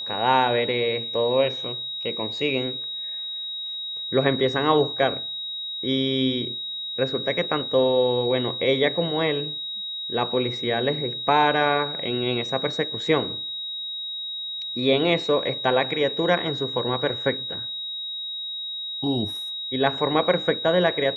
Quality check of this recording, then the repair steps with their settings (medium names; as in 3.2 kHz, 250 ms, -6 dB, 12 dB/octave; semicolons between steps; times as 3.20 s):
whine 3.8 kHz -29 dBFS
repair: band-stop 3.8 kHz, Q 30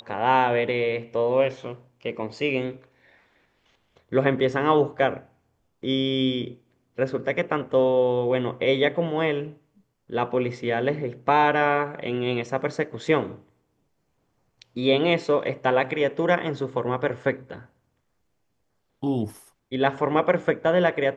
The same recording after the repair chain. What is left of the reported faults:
nothing left